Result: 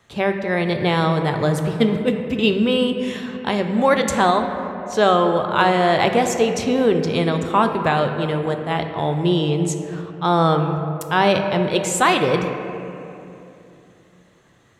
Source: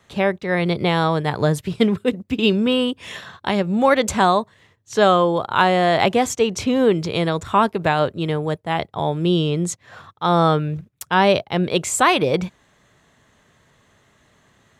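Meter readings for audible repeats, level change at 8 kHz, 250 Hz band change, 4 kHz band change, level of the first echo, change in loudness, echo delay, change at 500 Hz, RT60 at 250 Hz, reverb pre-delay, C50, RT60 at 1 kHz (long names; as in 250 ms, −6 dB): no echo audible, −0.5 dB, +0.5 dB, −0.5 dB, no echo audible, 0.0 dB, no echo audible, +0.5 dB, 3.7 s, 3 ms, 6.5 dB, 2.6 s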